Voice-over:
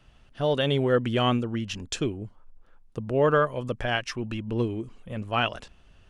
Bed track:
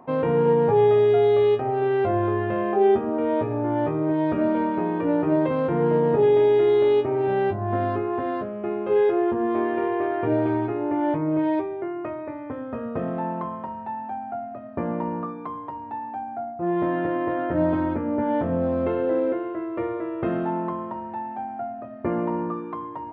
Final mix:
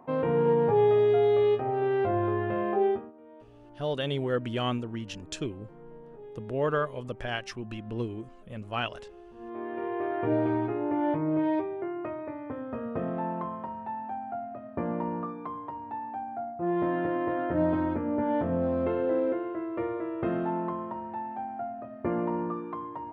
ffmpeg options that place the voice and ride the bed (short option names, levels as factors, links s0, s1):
-filter_complex "[0:a]adelay=3400,volume=0.501[s0];[1:a]volume=9.44,afade=t=out:st=2.75:d=0.37:silence=0.0668344,afade=t=in:st=9.32:d=0.97:silence=0.0630957[s1];[s0][s1]amix=inputs=2:normalize=0"